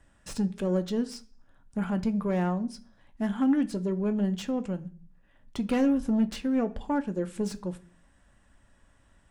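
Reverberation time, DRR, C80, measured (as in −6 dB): 0.40 s, 8.0 dB, 22.5 dB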